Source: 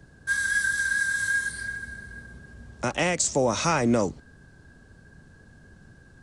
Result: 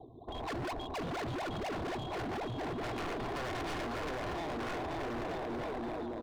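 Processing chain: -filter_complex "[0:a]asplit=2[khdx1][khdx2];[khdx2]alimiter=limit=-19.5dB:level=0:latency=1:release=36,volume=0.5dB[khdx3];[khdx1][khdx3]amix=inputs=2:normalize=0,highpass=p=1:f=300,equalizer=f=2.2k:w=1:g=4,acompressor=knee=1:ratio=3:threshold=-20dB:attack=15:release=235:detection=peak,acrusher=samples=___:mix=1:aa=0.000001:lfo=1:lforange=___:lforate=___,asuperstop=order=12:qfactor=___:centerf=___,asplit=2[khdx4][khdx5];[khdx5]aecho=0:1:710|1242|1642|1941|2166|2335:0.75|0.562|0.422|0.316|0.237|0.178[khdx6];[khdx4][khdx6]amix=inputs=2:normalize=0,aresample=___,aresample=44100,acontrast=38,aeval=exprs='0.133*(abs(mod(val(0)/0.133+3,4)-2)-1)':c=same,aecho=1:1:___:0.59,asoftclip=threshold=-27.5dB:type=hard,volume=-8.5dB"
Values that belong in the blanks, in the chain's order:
17, 17, 2.1, 0.68, 2000, 8000, 2.8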